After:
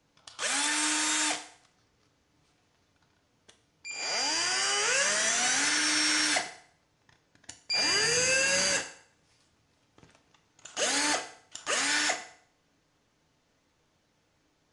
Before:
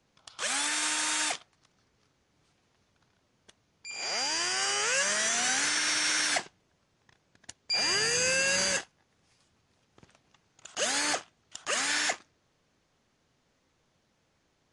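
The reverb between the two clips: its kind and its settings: FDN reverb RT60 0.58 s, low-frequency decay 0.8×, high-frequency decay 0.9×, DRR 5 dB

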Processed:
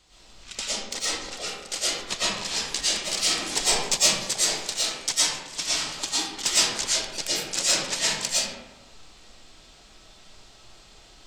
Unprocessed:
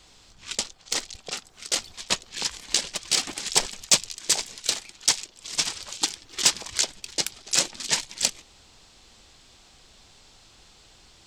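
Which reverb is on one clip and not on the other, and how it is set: digital reverb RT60 1.1 s, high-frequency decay 0.5×, pre-delay 75 ms, DRR -10 dB; gain -7 dB

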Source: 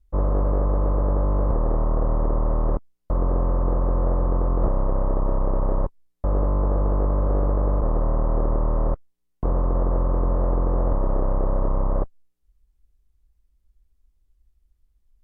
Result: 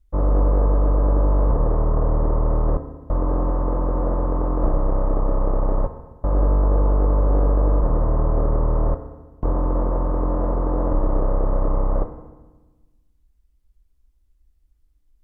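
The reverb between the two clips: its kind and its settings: FDN reverb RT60 1.2 s, low-frequency decay 1.35×, high-frequency decay 0.85×, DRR 6.5 dB; gain +1 dB

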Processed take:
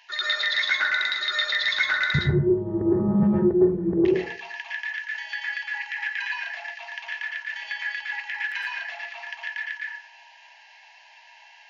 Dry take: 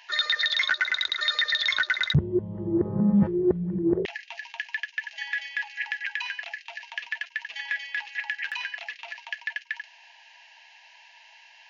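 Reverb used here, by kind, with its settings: plate-style reverb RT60 0.54 s, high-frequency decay 0.4×, pre-delay 0.1 s, DRR -5.5 dB; gain -3.5 dB

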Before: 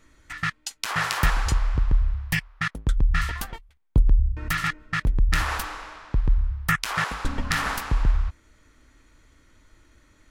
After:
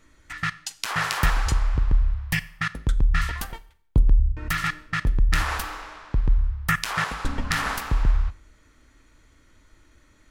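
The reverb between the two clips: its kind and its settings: Schroeder reverb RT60 0.57 s, combs from 29 ms, DRR 16.5 dB

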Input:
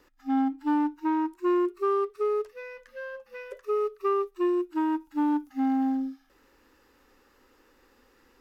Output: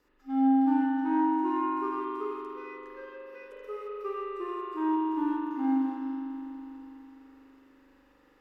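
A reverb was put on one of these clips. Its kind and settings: spring tank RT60 3.5 s, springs 41 ms, chirp 50 ms, DRR -7.5 dB; gain -10 dB

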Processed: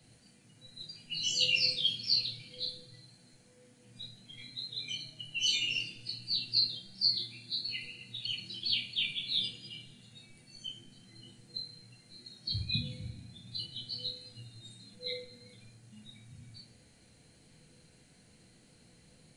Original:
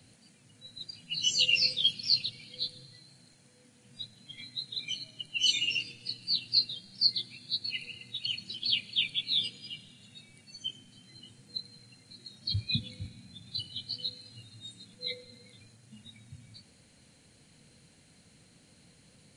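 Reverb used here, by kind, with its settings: shoebox room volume 38 m³, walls mixed, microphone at 0.66 m; gain -5 dB

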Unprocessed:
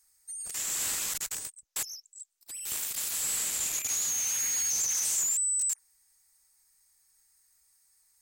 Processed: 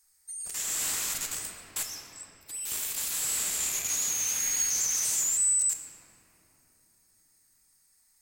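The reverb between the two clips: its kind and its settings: shoebox room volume 220 m³, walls hard, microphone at 0.41 m

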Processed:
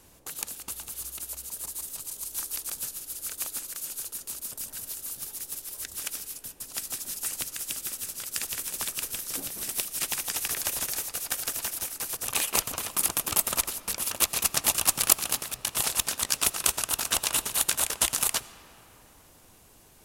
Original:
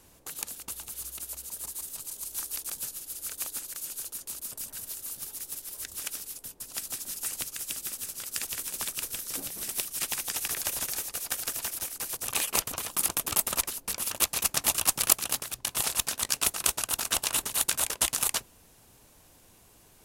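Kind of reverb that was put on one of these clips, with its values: digital reverb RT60 4.2 s, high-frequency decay 0.45×, pre-delay 40 ms, DRR 15.5 dB; gain +1.5 dB

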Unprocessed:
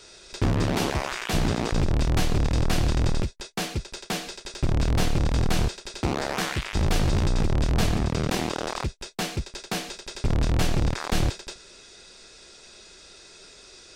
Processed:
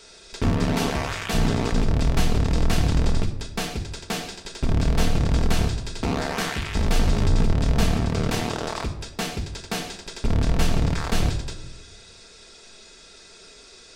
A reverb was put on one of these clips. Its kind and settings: shoebox room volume 3000 m³, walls furnished, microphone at 1.6 m

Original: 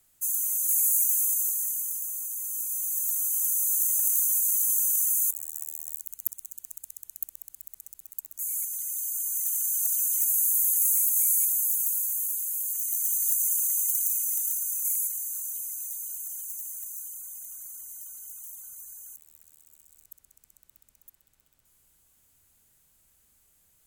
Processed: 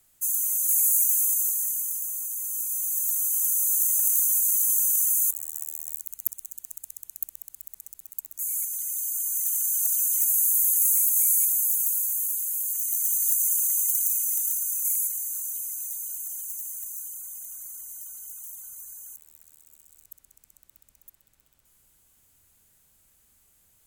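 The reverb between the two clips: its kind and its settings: spring tank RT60 3.2 s, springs 32/42 ms, chirp 45 ms, DRR 9.5 dB; gain +2 dB

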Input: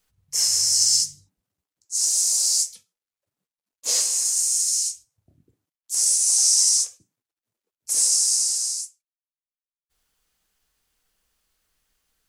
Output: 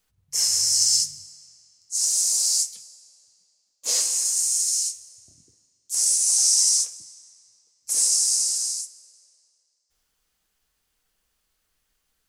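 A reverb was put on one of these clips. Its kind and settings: digital reverb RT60 3 s, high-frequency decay 0.85×, pre-delay 0.105 s, DRR 19.5 dB; gain -1 dB

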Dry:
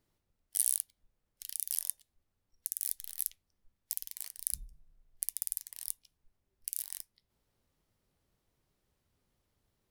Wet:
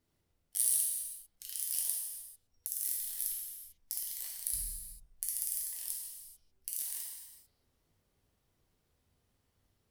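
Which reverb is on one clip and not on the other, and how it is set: non-linear reverb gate 0.47 s falling, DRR -4 dB; gain -3.5 dB

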